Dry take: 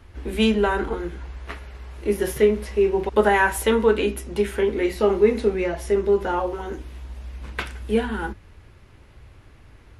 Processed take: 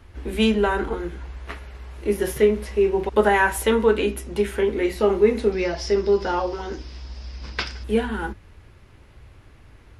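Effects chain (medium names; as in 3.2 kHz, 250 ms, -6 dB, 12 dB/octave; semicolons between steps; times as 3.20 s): 5.52–7.84 s: resonant low-pass 5.1 kHz, resonance Q 9.6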